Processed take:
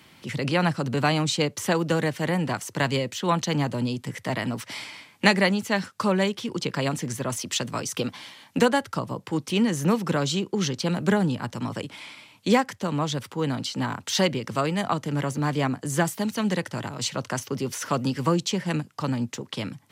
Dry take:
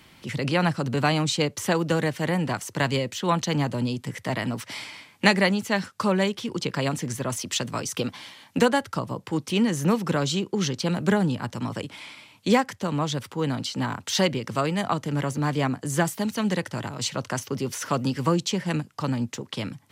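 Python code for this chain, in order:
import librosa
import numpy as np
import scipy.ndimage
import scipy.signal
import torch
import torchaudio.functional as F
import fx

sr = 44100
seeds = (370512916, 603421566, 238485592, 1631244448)

y = scipy.signal.sosfilt(scipy.signal.butter(2, 84.0, 'highpass', fs=sr, output='sos'), x)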